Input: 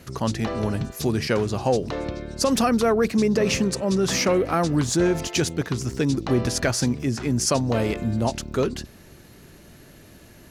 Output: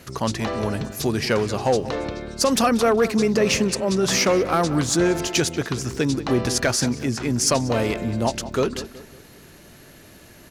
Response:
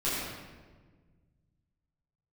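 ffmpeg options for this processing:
-filter_complex "[0:a]lowshelf=f=340:g=-5.5,asoftclip=type=hard:threshold=0.178,asplit=2[s0][s1];[s1]adelay=186,lowpass=f=3200:p=1,volume=0.2,asplit=2[s2][s3];[s3]adelay=186,lowpass=f=3200:p=1,volume=0.4,asplit=2[s4][s5];[s5]adelay=186,lowpass=f=3200:p=1,volume=0.4,asplit=2[s6][s7];[s7]adelay=186,lowpass=f=3200:p=1,volume=0.4[s8];[s2][s4][s6][s8]amix=inputs=4:normalize=0[s9];[s0][s9]amix=inputs=2:normalize=0,volume=1.5"

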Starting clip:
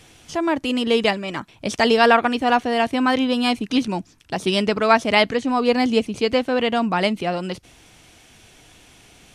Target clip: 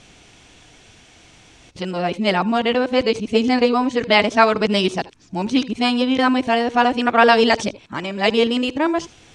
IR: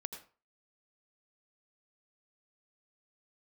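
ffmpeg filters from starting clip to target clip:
-filter_complex "[0:a]areverse,lowpass=f=8200:w=0.5412,lowpass=f=8200:w=1.3066,asplit=2[s0][s1];[1:a]atrim=start_sample=2205,atrim=end_sample=3528[s2];[s1][s2]afir=irnorm=-1:irlink=0,volume=1.26[s3];[s0][s3]amix=inputs=2:normalize=0,volume=0.631"

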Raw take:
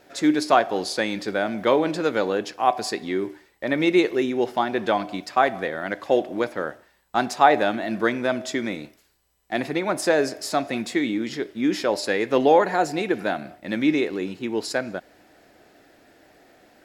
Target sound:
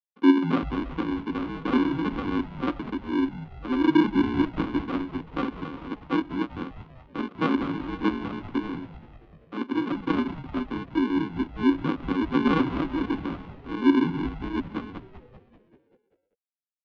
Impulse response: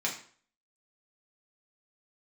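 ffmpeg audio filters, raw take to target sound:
-filter_complex "[0:a]afreqshift=-27,afftfilt=real='re*gte(hypot(re,im),0.0794)':imag='im*gte(hypot(re,im),0.0794)':win_size=1024:overlap=0.75,aresample=16000,acrusher=samples=25:mix=1:aa=0.000001,aresample=44100,highpass=f=250:w=0.5412,highpass=f=250:w=1.3066,equalizer=f=270:t=q:w=4:g=9,equalizer=f=440:t=q:w=4:g=-7,equalizer=f=840:t=q:w=4:g=-8,equalizer=f=1200:t=q:w=4:g=8,equalizer=f=1800:t=q:w=4:g=-8,equalizer=f=2600:t=q:w=4:g=-3,lowpass=f=3000:w=0.5412,lowpass=f=3000:w=1.3066,asplit=8[s0][s1][s2][s3][s4][s5][s6][s7];[s1]adelay=194,afreqshift=-110,volume=0.2[s8];[s2]adelay=388,afreqshift=-220,volume=0.126[s9];[s3]adelay=582,afreqshift=-330,volume=0.0794[s10];[s4]adelay=776,afreqshift=-440,volume=0.0501[s11];[s5]adelay=970,afreqshift=-550,volume=0.0313[s12];[s6]adelay=1164,afreqshift=-660,volume=0.0197[s13];[s7]adelay=1358,afreqshift=-770,volume=0.0124[s14];[s0][s8][s9][s10][s11][s12][s13][s14]amix=inputs=8:normalize=0,volume=0.794"

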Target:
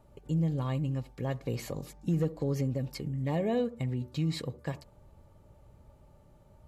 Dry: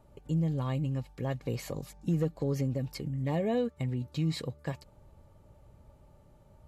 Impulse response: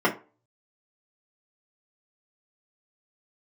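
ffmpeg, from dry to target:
-filter_complex "[0:a]asplit=2[s0][s1];[s1]lowpass=1400[s2];[1:a]atrim=start_sample=2205,adelay=61[s3];[s2][s3]afir=irnorm=-1:irlink=0,volume=0.0211[s4];[s0][s4]amix=inputs=2:normalize=0"

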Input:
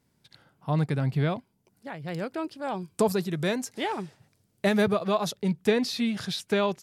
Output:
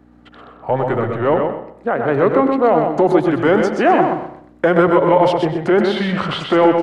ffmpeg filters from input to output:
-filter_complex "[0:a]aemphasis=mode=reproduction:type=75kf,acompressor=threshold=0.0398:ratio=3,asetrate=37084,aresample=44100,atempo=1.18921,apsyclip=26.6,asplit=2[s0][s1];[s1]aecho=0:1:126|252|378:0.562|0.141|0.0351[s2];[s0][s2]amix=inputs=2:normalize=0,aeval=exprs='val(0)+0.0398*(sin(2*PI*60*n/s)+sin(2*PI*2*60*n/s)/2+sin(2*PI*3*60*n/s)/3+sin(2*PI*4*60*n/s)/4+sin(2*PI*5*60*n/s)/5)':c=same,acrossover=split=270 2000:gain=0.1 1 0.2[s3][s4][s5];[s3][s4][s5]amix=inputs=3:normalize=0,asplit=2[s6][s7];[s7]adelay=96,lowpass=f=2700:p=1,volume=0.316,asplit=2[s8][s9];[s9]adelay=96,lowpass=f=2700:p=1,volume=0.33,asplit=2[s10][s11];[s11]adelay=96,lowpass=f=2700:p=1,volume=0.33,asplit=2[s12][s13];[s13]adelay=96,lowpass=f=2700:p=1,volume=0.33[s14];[s8][s10][s12][s14]amix=inputs=4:normalize=0[s15];[s6][s15]amix=inputs=2:normalize=0,volume=0.531"

